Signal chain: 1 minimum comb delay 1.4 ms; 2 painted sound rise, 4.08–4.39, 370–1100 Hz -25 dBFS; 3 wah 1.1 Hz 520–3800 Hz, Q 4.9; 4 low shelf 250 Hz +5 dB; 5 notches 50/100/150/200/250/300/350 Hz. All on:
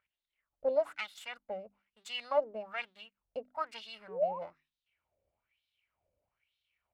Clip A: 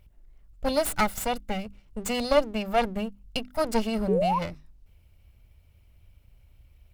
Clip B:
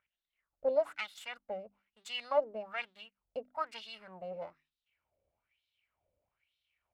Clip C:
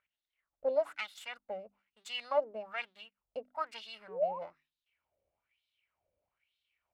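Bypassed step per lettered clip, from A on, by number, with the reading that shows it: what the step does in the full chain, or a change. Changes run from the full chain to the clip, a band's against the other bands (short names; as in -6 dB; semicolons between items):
3, 250 Hz band +15.5 dB; 2, momentary loudness spread change +1 LU; 4, 250 Hz band -2.5 dB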